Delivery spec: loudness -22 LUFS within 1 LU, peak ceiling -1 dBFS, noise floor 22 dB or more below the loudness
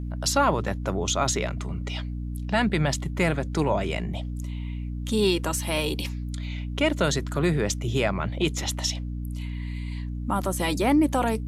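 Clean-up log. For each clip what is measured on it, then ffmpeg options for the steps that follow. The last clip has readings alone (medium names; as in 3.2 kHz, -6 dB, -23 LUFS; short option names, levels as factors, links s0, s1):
hum 60 Hz; highest harmonic 300 Hz; hum level -29 dBFS; loudness -26.5 LUFS; peak level -8.5 dBFS; loudness target -22.0 LUFS
-> -af "bandreject=f=60:t=h:w=6,bandreject=f=120:t=h:w=6,bandreject=f=180:t=h:w=6,bandreject=f=240:t=h:w=6,bandreject=f=300:t=h:w=6"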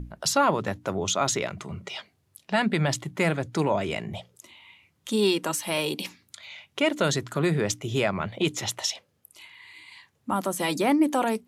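hum not found; loudness -26.0 LUFS; peak level -9.5 dBFS; loudness target -22.0 LUFS
-> -af "volume=1.58"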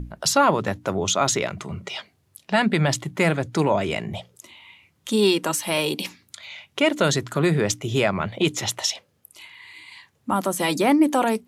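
loudness -22.0 LUFS; peak level -5.5 dBFS; noise floor -65 dBFS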